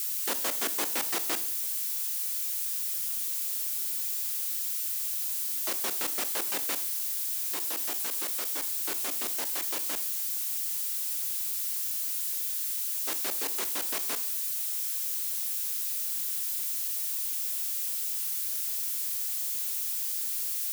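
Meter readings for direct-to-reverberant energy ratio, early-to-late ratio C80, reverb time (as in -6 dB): 11.0 dB, 18.0 dB, 0.55 s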